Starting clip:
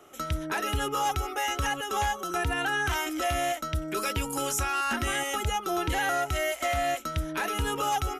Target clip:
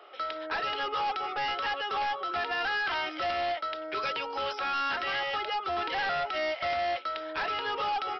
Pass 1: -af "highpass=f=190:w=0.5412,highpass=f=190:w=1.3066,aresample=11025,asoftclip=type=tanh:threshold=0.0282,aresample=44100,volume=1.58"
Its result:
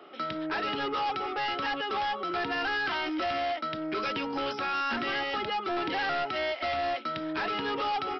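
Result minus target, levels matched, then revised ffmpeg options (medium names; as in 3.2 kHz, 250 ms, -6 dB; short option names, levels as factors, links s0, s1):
250 Hz band +10.5 dB
-af "highpass=f=460:w=0.5412,highpass=f=460:w=1.3066,aresample=11025,asoftclip=type=tanh:threshold=0.0282,aresample=44100,volume=1.58"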